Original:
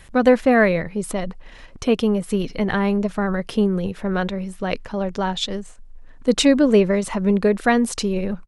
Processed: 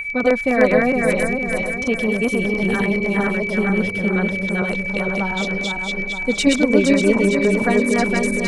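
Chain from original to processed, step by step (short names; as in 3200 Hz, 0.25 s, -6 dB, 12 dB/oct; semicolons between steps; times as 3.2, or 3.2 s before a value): regenerating reverse delay 0.231 s, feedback 68%, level 0 dB; whine 2300 Hz -19 dBFS; LFO notch saw down 9.8 Hz 580–5600 Hz; gain -3 dB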